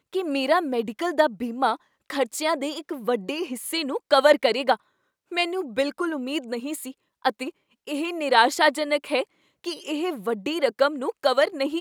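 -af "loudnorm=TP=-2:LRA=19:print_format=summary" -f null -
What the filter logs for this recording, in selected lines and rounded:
Input Integrated:    -24.6 LUFS
Input True Peak:      -2.9 dBTP
Input LRA:             2.5 LU
Input Threshold:     -34.8 LUFS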